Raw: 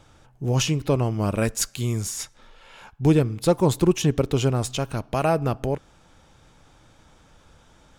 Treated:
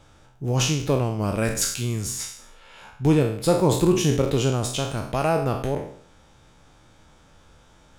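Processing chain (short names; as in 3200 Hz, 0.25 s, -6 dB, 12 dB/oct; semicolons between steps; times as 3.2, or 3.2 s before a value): spectral trails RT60 0.59 s; gain -1.5 dB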